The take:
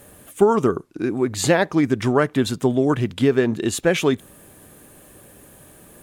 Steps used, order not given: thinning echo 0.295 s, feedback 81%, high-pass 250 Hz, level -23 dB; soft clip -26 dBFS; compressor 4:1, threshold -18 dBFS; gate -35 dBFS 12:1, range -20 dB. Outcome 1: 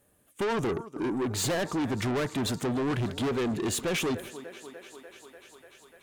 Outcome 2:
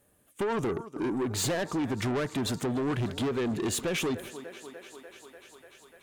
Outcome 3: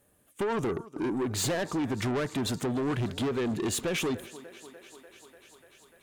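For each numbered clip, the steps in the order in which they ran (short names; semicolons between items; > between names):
gate > thinning echo > soft clip > compressor; gate > thinning echo > compressor > soft clip; compressor > gate > thinning echo > soft clip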